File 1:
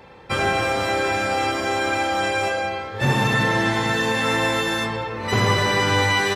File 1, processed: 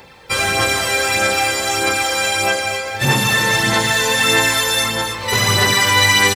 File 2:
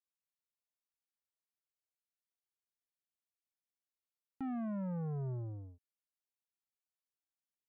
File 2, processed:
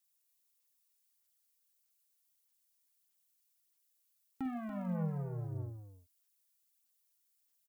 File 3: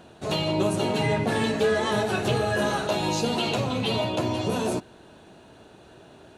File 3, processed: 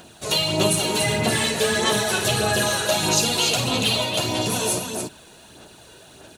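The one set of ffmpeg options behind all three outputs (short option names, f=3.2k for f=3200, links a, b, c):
-af "aecho=1:1:49.56|285.7:0.316|0.501,aphaser=in_gain=1:out_gain=1:delay=2.1:decay=0.37:speed=1.6:type=sinusoidal,crystalizer=i=5.5:c=0,volume=-2dB"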